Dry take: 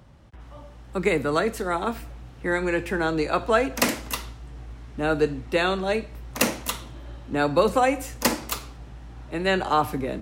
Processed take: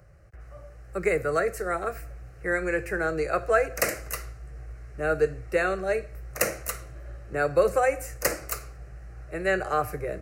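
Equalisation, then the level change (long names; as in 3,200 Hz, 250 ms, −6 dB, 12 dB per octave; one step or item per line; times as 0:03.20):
phaser with its sweep stopped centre 930 Hz, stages 6
0.0 dB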